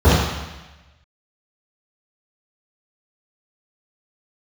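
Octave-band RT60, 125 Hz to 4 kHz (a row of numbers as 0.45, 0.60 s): 1.1, 1.1, 1.0, 1.1, 1.2, 1.2 s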